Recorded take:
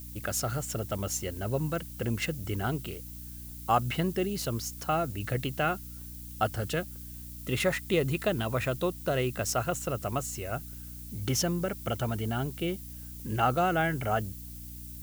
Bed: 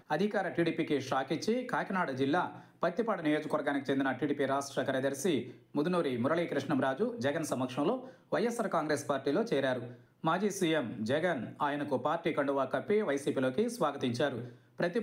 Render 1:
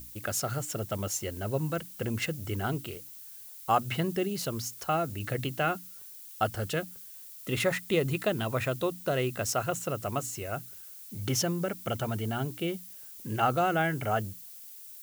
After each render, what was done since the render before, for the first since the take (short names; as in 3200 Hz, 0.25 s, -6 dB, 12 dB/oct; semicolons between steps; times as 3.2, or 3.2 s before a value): notches 60/120/180/240/300 Hz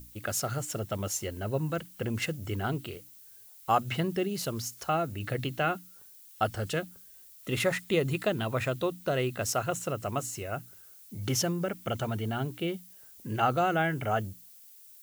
noise print and reduce 6 dB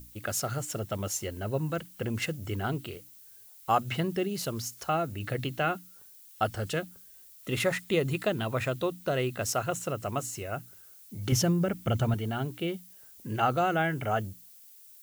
11.32–12.14 low shelf 200 Hz +11.5 dB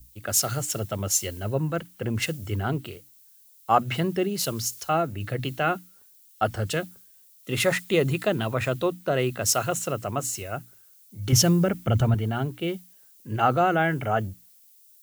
in parallel at -1 dB: limiter -23.5 dBFS, peak gain reduction 11 dB; on the sum: three-band expander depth 70%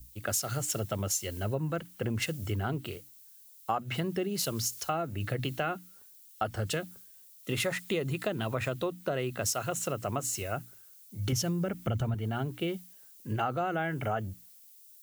compressor 6:1, threshold -28 dBFS, peak gain reduction 13.5 dB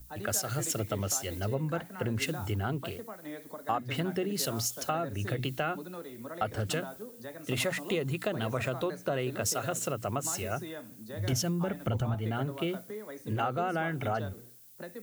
add bed -12 dB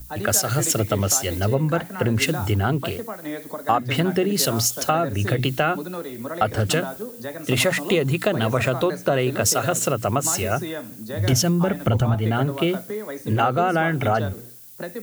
gain +11 dB